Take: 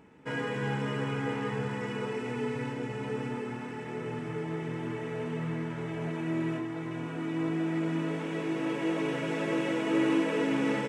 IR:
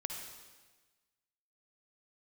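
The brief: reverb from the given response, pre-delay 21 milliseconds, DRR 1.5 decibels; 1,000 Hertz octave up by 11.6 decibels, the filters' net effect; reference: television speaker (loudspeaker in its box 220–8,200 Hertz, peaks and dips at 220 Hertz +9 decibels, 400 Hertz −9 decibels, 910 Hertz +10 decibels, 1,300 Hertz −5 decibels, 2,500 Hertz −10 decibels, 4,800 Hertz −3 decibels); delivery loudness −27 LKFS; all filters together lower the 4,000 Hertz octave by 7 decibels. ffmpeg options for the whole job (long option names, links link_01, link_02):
-filter_complex "[0:a]equalizer=frequency=1000:width_type=o:gain=7,equalizer=frequency=4000:width_type=o:gain=-6.5,asplit=2[link_01][link_02];[1:a]atrim=start_sample=2205,adelay=21[link_03];[link_02][link_03]afir=irnorm=-1:irlink=0,volume=-1.5dB[link_04];[link_01][link_04]amix=inputs=2:normalize=0,highpass=frequency=220:width=0.5412,highpass=frequency=220:width=1.3066,equalizer=frequency=220:width_type=q:width=4:gain=9,equalizer=frequency=400:width_type=q:width=4:gain=-9,equalizer=frequency=910:width_type=q:width=4:gain=10,equalizer=frequency=1300:width_type=q:width=4:gain=-5,equalizer=frequency=2500:width_type=q:width=4:gain=-10,equalizer=frequency=4800:width_type=q:width=4:gain=-3,lowpass=frequency=8200:width=0.5412,lowpass=frequency=8200:width=1.3066,volume=0.5dB"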